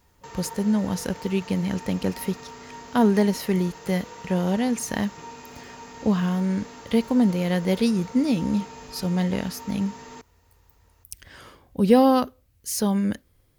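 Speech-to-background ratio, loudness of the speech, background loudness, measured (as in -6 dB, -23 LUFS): 17.5 dB, -24.0 LUFS, -41.5 LUFS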